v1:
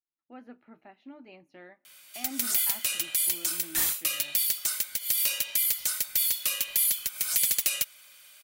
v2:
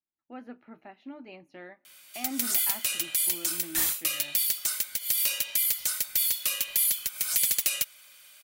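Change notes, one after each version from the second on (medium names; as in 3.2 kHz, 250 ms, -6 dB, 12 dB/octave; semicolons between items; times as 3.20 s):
speech +4.0 dB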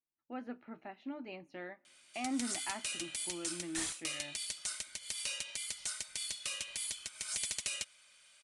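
background -7.5 dB; master: add steep low-pass 10 kHz 72 dB/octave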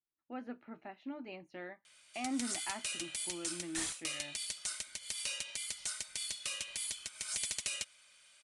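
reverb: off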